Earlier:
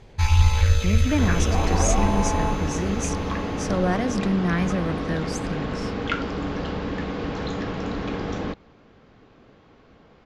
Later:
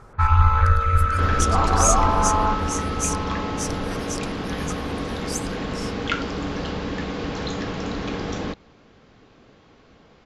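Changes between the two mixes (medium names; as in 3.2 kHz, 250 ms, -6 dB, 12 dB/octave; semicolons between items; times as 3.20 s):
speech: add differentiator; first sound: add resonant low-pass 1.3 kHz, resonance Q 10; master: add treble shelf 4.1 kHz +10 dB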